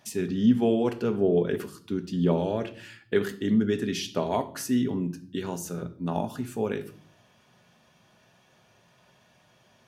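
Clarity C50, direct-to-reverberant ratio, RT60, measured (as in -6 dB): 15.5 dB, 7.0 dB, 0.50 s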